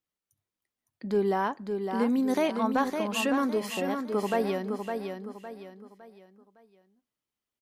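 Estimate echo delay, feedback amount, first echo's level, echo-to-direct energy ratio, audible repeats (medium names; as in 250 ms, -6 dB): 559 ms, 36%, -6.0 dB, -5.5 dB, 4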